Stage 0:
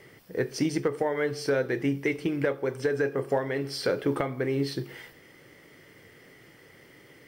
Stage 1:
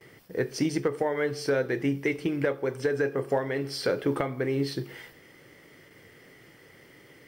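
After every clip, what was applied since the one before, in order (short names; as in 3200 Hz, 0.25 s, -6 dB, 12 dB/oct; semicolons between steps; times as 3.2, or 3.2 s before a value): gate with hold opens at -44 dBFS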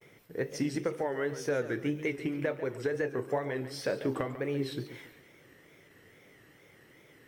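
wow and flutter 130 cents; notch 4700 Hz, Q 7.7; warbling echo 0.14 s, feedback 36%, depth 159 cents, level -13 dB; gain -5 dB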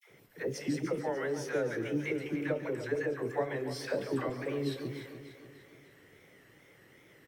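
dispersion lows, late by 89 ms, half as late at 620 Hz; on a send: feedback echo 0.296 s, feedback 49%, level -11.5 dB; on the sum: gain -1.5 dB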